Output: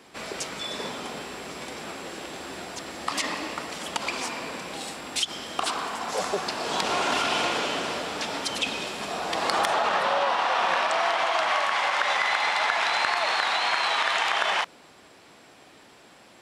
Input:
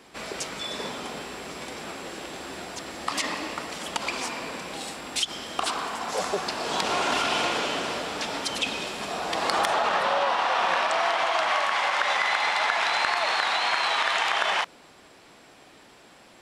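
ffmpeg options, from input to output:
ffmpeg -i in.wav -af "highpass=52" out.wav

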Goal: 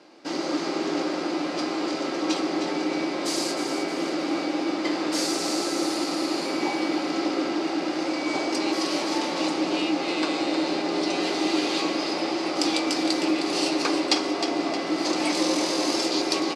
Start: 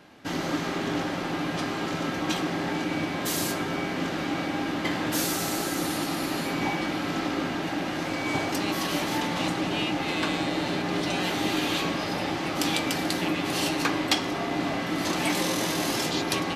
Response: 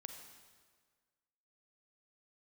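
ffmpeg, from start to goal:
-af "highpass=320,equalizer=frequency=330:width_type=q:width=4:gain=9,equalizer=frequency=530:width_type=q:width=4:gain=4,equalizer=frequency=1700:width_type=q:width=4:gain=-6,equalizer=frequency=3200:width_type=q:width=4:gain=-4,equalizer=frequency=4800:width_type=q:width=4:gain=8,lowpass=frequency=9100:width=0.5412,lowpass=frequency=9100:width=1.3066,aecho=1:1:311|622|933|1244|1555:0.398|0.175|0.0771|0.0339|0.0149"

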